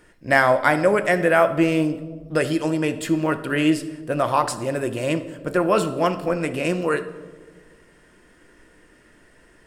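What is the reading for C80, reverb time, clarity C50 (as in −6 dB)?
15.5 dB, 1.4 s, 13.0 dB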